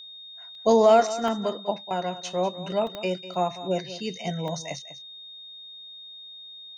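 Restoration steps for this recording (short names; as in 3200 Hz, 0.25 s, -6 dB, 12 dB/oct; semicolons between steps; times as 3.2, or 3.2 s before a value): de-click; notch 3700 Hz, Q 30; interpolate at 0.55/1.28/2.87/3.34/4.48, 1.5 ms; inverse comb 0.197 s -14.5 dB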